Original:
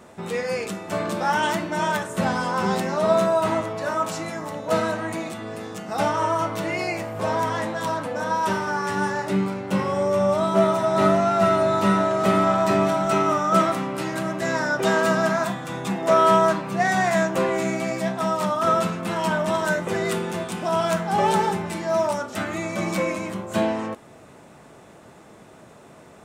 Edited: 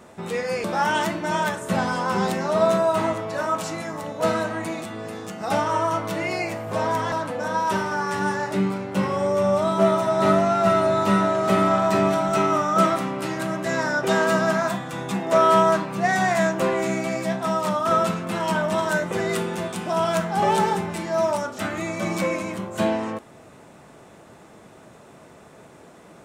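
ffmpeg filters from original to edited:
-filter_complex "[0:a]asplit=3[a][b][c];[a]atrim=end=0.642[d];[b]atrim=start=1.118:end=7.602[e];[c]atrim=start=7.878[f];[d][e]acrossfade=d=0.004:c1=hsin:c2=hsin[g];[g][f]acrossfade=d=0.004:c1=hsin:c2=hsin"

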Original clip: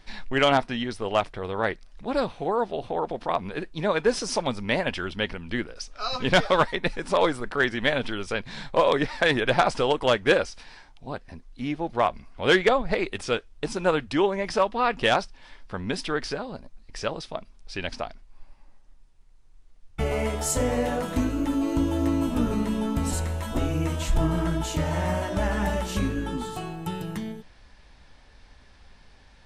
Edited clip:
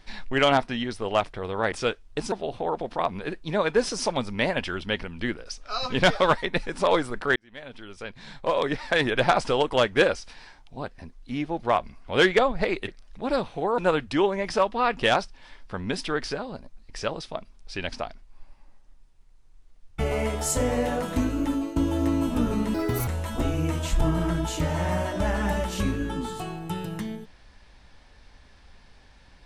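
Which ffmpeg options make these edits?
-filter_complex "[0:a]asplit=9[a][b][c][d][e][f][g][h][i];[a]atrim=end=1.722[j];[b]atrim=start=13.178:end=13.782[k];[c]atrim=start=2.618:end=7.66,asetpts=PTS-STARTPTS,afade=t=out:st=5.038:d=0.004:c=hsin[l];[d]atrim=start=7.66:end=13.182,asetpts=PTS-STARTPTS,afade=t=in:d=1.85[m];[e]atrim=start=1.718:end=2.622[n];[f]atrim=start=13.778:end=21.76,asetpts=PTS-STARTPTS,afade=t=out:st=7.732:d=0.25:silence=0.251189[o];[g]atrim=start=21.76:end=22.744,asetpts=PTS-STARTPTS,afade=t=in:d=0.004:c=hsin:silence=0.251189[p];[h]atrim=start=22.74:end=23.24,asetpts=PTS-STARTPTS,asetrate=66150,aresample=44100[q];[i]atrim=start=23.236[r];[j][k]acrossfade=d=0.004:c1=hsin:c2=hsin[s];[l][m]concat=n=2:v=0:a=1[t];[s][t]acrossfade=d=0.004:c1=hsin:c2=hsin[u];[u][n]acrossfade=d=0.004:c1=hsin:c2=hsin[v];[o][p]concat=n=2:v=0:a=1[w];[v][w]acrossfade=d=0.004:c1=hsin:c2=hsin[x];[x][q]acrossfade=d=0.004:c1=hsin:c2=hsin[y];[y][r]acrossfade=d=0.004:c1=hsin:c2=hsin"

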